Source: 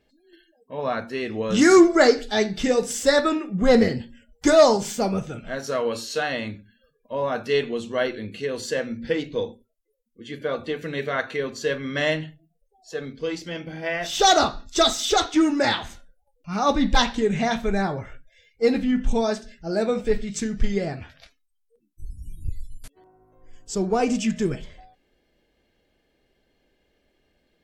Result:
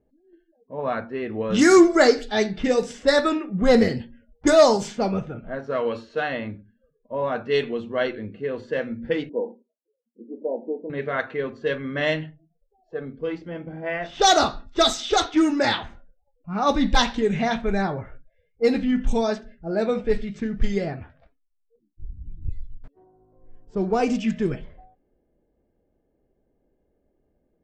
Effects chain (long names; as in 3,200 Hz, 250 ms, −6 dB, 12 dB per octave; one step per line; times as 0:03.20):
0:09.29–0:10.90: linear-phase brick-wall band-pass 190–1,000 Hz
low-pass that shuts in the quiet parts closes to 660 Hz, open at −14.5 dBFS